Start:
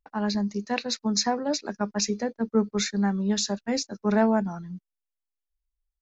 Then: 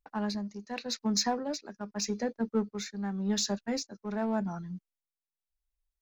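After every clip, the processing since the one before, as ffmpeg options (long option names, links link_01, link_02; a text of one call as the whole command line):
ffmpeg -i in.wav -filter_complex "[0:a]asplit=2[link_01][link_02];[link_02]asoftclip=type=hard:threshold=-27.5dB,volume=-7.5dB[link_03];[link_01][link_03]amix=inputs=2:normalize=0,tremolo=f=0.86:d=0.65,volume=-5dB" out.wav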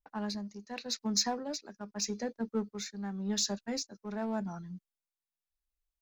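ffmpeg -i in.wav -af "adynamicequalizer=threshold=0.00562:dfrequency=3200:dqfactor=0.7:tfrequency=3200:tqfactor=0.7:attack=5:release=100:ratio=0.375:range=2.5:mode=boostabove:tftype=highshelf,volume=-4dB" out.wav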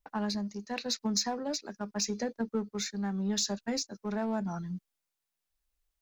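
ffmpeg -i in.wav -af "acompressor=threshold=-37dB:ratio=2.5,volume=6.5dB" out.wav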